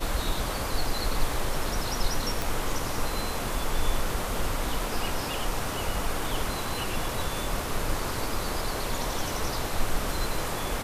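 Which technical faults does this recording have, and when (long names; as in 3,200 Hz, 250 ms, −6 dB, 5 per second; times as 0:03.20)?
0:02.42: click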